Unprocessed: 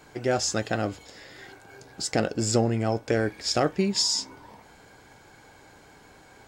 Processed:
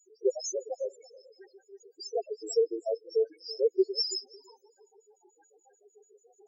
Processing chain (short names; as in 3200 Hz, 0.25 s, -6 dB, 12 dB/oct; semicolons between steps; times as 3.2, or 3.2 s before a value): LFO high-pass square 6.8 Hz 400–5900 Hz; loudest bins only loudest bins 2; darkening echo 0.33 s, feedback 16%, low-pass 4000 Hz, level -21.5 dB